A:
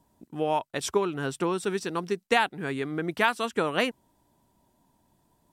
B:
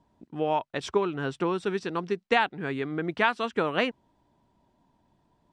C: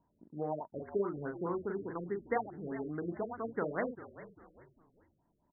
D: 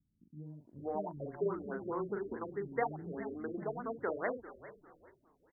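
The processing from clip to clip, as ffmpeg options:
-af "lowpass=4k"
-filter_complex "[0:a]asplit=2[a][b];[b]adelay=40,volume=-5dB[c];[a][c]amix=inputs=2:normalize=0,asplit=4[d][e][f][g];[e]adelay=396,afreqshift=-57,volume=-16dB[h];[f]adelay=792,afreqshift=-114,volume=-24.6dB[i];[g]adelay=1188,afreqshift=-171,volume=-33.3dB[j];[d][h][i][j]amix=inputs=4:normalize=0,afftfilt=real='re*lt(b*sr/1024,580*pow(2200/580,0.5+0.5*sin(2*PI*4.8*pts/sr)))':imag='im*lt(b*sr/1024,580*pow(2200/580,0.5+0.5*sin(2*PI*4.8*pts/sr)))':win_size=1024:overlap=0.75,volume=-9dB"
-filter_complex "[0:a]acrossover=split=250[a][b];[b]adelay=460[c];[a][c]amix=inputs=2:normalize=0"

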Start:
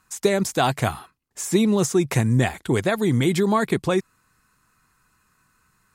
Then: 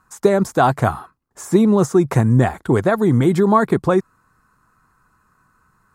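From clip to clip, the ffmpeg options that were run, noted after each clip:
-af "highshelf=f=1.8k:t=q:w=1.5:g=-9.5,volume=5dB"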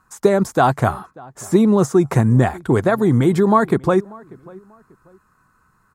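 -filter_complex "[0:a]asplit=2[a][b];[b]adelay=590,lowpass=f=1.7k:p=1,volume=-23dB,asplit=2[c][d];[d]adelay=590,lowpass=f=1.7k:p=1,volume=0.31[e];[a][c][e]amix=inputs=3:normalize=0"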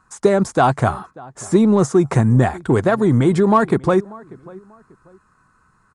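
-filter_complex "[0:a]asplit=2[a][b];[b]asoftclip=type=tanh:threshold=-17.5dB,volume=-9.5dB[c];[a][c]amix=inputs=2:normalize=0,aresample=22050,aresample=44100,volume=-1dB"

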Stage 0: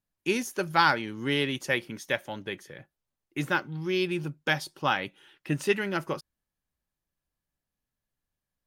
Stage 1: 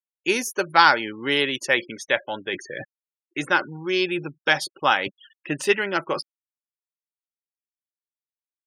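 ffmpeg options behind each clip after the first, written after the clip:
-af "afftfilt=real='re*gte(hypot(re,im),0.00631)':imag='im*gte(hypot(re,im),0.00631)':win_size=1024:overlap=0.75,bass=f=250:g=-14,treble=f=4k:g=1,areverse,acompressor=mode=upward:threshold=-31dB:ratio=2.5,areverse,volume=7dB"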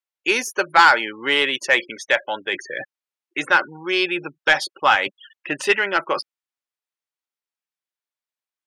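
-filter_complex "[0:a]lowshelf=f=200:g=-6,asplit=2[a][b];[b]highpass=f=720:p=1,volume=12dB,asoftclip=type=tanh:threshold=-1.5dB[c];[a][c]amix=inputs=2:normalize=0,lowpass=f=3.3k:p=1,volume=-6dB"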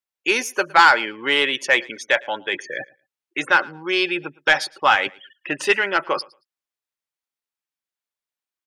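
-af "aecho=1:1:112|224:0.0631|0.0107"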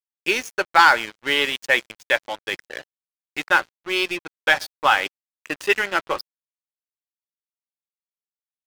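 -af "aeval=exprs='sgn(val(0))*max(abs(val(0))-0.0335,0)':c=same"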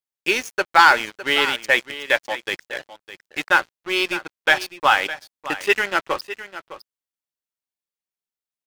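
-af "aecho=1:1:608:0.2,volume=1dB"

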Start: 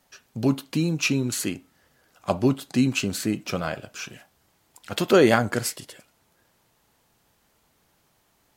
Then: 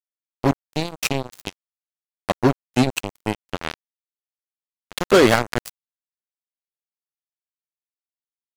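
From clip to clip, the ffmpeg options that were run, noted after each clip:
-af "acrusher=bits=2:mix=0:aa=0.5,volume=2.5dB"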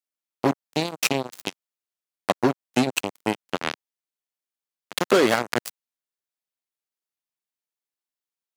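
-af "acompressor=threshold=-16dB:ratio=6,highpass=180,volume=2dB"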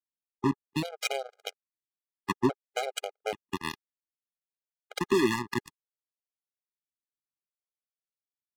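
-af "adynamicsmooth=sensitivity=3:basefreq=610,afftfilt=real='re*gt(sin(2*PI*0.6*pts/sr)*(1-2*mod(floor(b*sr/1024/410),2)),0)':imag='im*gt(sin(2*PI*0.6*pts/sr)*(1-2*mod(floor(b*sr/1024/410),2)),0)':win_size=1024:overlap=0.75,volume=-3.5dB"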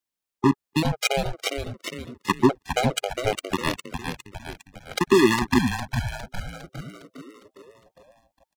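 -filter_complex "[0:a]asplit=8[a][b][c][d][e][f][g][h];[b]adelay=407,afreqshift=-130,volume=-6.5dB[i];[c]adelay=814,afreqshift=-260,volume=-11.9dB[j];[d]adelay=1221,afreqshift=-390,volume=-17.2dB[k];[e]adelay=1628,afreqshift=-520,volume=-22.6dB[l];[f]adelay=2035,afreqshift=-650,volume=-27.9dB[m];[g]adelay=2442,afreqshift=-780,volume=-33.3dB[n];[h]adelay=2849,afreqshift=-910,volume=-38.6dB[o];[a][i][j][k][l][m][n][o]amix=inputs=8:normalize=0,volume=7.5dB"

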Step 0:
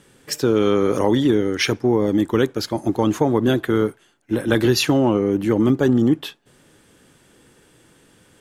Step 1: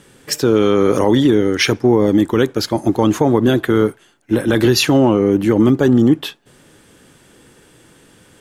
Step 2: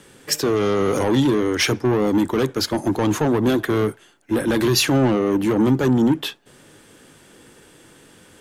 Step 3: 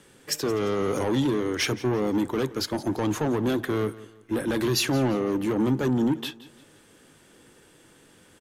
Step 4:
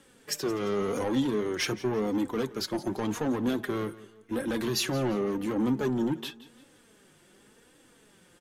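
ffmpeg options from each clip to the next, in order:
-af "alimiter=level_in=8dB:limit=-1dB:release=50:level=0:latency=1,volume=-2.5dB"
-filter_complex "[0:a]acrossover=split=210|5700[a][b][c];[a]flanger=delay=19.5:depth=4:speed=0.28[d];[b]asoftclip=type=tanh:threshold=-16.5dB[e];[d][e][c]amix=inputs=3:normalize=0"
-af "aecho=1:1:172|344|516:0.126|0.0453|0.0163,volume=-6.5dB"
-af "flanger=delay=3.6:depth=2.2:regen=39:speed=0.9:shape=triangular"

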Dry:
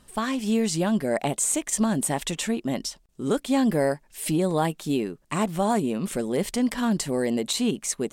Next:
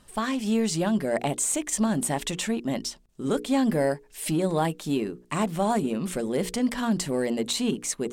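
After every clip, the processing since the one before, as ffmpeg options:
-filter_complex "[0:a]highshelf=f=10k:g=-3.5,bandreject=f=60:t=h:w=6,bandreject=f=120:t=h:w=6,bandreject=f=180:t=h:w=6,bandreject=f=240:t=h:w=6,bandreject=f=300:t=h:w=6,bandreject=f=360:t=h:w=6,bandreject=f=420:t=h:w=6,bandreject=f=480:t=h:w=6,asplit=2[a][b];[b]volume=29.5dB,asoftclip=hard,volume=-29.5dB,volume=-12dB[c];[a][c]amix=inputs=2:normalize=0,volume=-1.5dB"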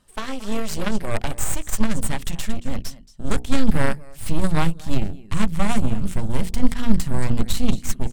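-af "aecho=1:1:226:0.168,aeval=exprs='0.266*(cos(1*acos(clip(val(0)/0.266,-1,1)))-cos(1*PI/2))+0.0596*(cos(3*acos(clip(val(0)/0.266,-1,1)))-cos(3*PI/2))+0.0299*(cos(6*acos(clip(val(0)/0.266,-1,1)))-cos(6*PI/2))':c=same,asubboost=boost=10:cutoff=130,volume=4.5dB"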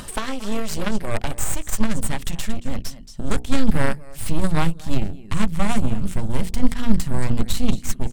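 -af "acompressor=mode=upward:threshold=-18dB:ratio=2.5"

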